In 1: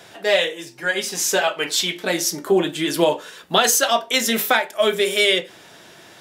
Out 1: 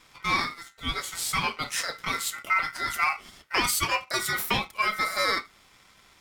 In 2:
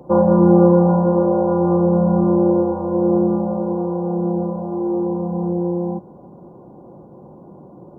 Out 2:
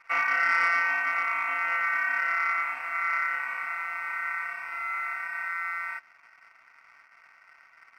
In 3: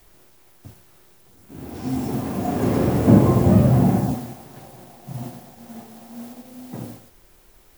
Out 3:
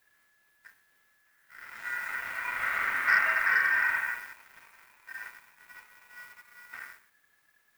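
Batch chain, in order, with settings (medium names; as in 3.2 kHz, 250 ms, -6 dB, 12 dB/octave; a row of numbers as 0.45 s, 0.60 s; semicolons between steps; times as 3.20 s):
ring modulator 1.7 kHz; dynamic bell 4.7 kHz, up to -3 dB, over -34 dBFS, Q 1; waveshaping leveller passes 1; normalise loudness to -27 LUFS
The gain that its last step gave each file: -8.0 dB, -12.0 dB, -11.0 dB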